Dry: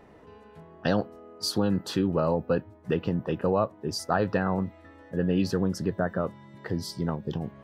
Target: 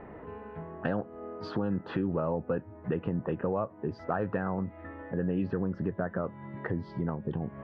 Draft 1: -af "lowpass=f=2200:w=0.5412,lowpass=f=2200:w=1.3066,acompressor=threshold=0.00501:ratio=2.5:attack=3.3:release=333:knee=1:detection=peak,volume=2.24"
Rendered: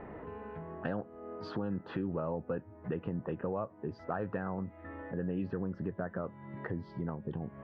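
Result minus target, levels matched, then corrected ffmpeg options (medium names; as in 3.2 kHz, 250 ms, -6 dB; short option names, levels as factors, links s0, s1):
compression: peak gain reduction +5 dB
-af "lowpass=f=2200:w=0.5412,lowpass=f=2200:w=1.3066,acompressor=threshold=0.0133:ratio=2.5:attack=3.3:release=333:knee=1:detection=peak,volume=2.24"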